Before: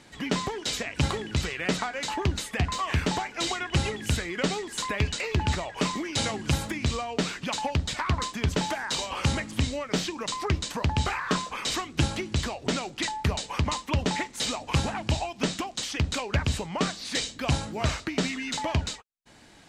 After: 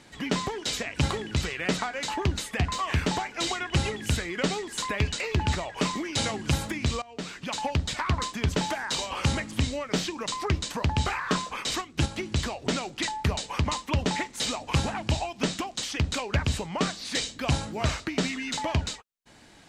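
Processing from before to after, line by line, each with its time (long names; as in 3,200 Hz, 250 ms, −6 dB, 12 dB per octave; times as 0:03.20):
0:07.02–0:07.67: fade in, from −18.5 dB
0:11.62–0:12.23: transient designer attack −2 dB, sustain −7 dB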